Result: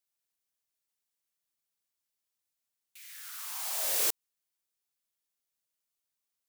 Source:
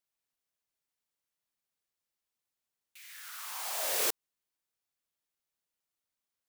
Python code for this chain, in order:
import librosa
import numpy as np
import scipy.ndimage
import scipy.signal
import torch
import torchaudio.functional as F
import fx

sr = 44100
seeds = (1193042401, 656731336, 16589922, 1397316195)

y = fx.high_shelf(x, sr, hz=3500.0, db=7.5)
y = np.clip(10.0 ** (17.0 / 20.0) * y, -1.0, 1.0) / 10.0 ** (17.0 / 20.0)
y = y * 10.0 ** (-4.0 / 20.0)